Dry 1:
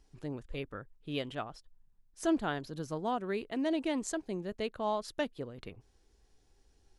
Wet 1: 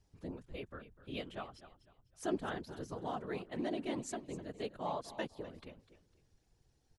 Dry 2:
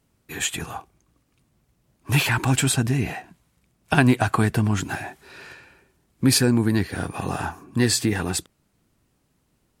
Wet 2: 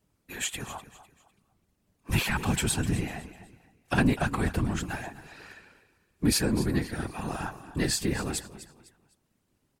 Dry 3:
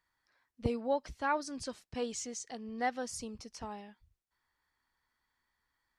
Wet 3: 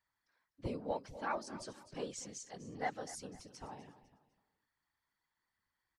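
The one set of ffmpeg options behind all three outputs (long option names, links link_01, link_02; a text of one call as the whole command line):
ffmpeg -i in.wav -af "aecho=1:1:251|502|753:0.178|0.0569|0.0182,asoftclip=type=tanh:threshold=-7.5dB,afftfilt=real='hypot(re,im)*cos(2*PI*random(0))':imag='hypot(re,im)*sin(2*PI*random(1))':win_size=512:overlap=0.75" out.wav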